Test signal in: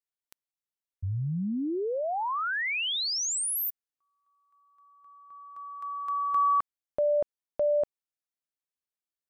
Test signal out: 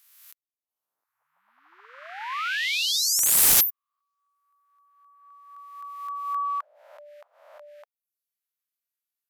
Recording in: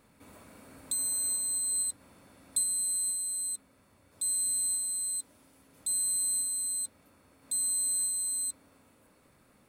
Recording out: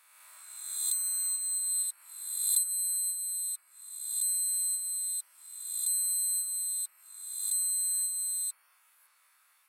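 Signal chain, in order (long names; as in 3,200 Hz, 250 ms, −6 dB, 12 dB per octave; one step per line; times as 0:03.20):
peak hold with a rise ahead of every peak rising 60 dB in 1.24 s
high-pass filter 1,100 Hz 24 dB per octave
reverb reduction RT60 0.57 s
parametric band 12,000 Hz +14 dB 0.24 octaves
wrap-around overflow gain 11.5 dB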